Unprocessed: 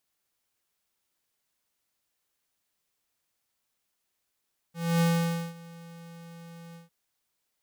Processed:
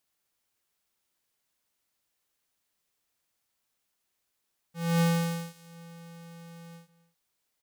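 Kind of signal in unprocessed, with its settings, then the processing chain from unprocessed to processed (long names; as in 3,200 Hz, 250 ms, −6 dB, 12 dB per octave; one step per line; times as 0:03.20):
note with an ADSR envelope square 168 Hz, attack 266 ms, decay 528 ms, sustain −23.5 dB, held 2.01 s, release 143 ms −22.5 dBFS
single-tap delay 259 ms −19 dB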